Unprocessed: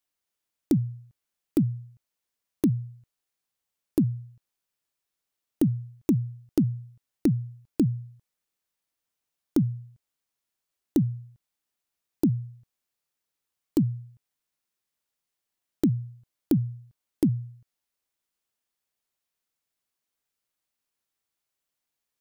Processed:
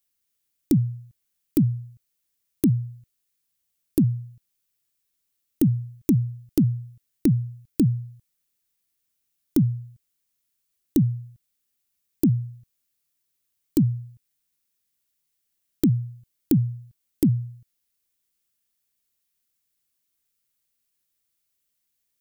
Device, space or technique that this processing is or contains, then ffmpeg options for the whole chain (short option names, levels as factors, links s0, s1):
smiley-face EQ: -af "lowshelf=f=150:g=4,equalizer=f=820:t=o:w=1.6:g=-8.5,highshelf=f=8800:g=8.5,volume=1.41"